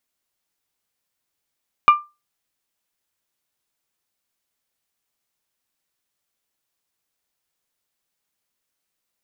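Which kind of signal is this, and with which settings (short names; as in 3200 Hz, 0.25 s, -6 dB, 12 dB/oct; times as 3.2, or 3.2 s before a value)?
glass hit bell, lowest mode 1190 Hz, decay 0.25 s, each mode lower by 11 dB, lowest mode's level -4 dB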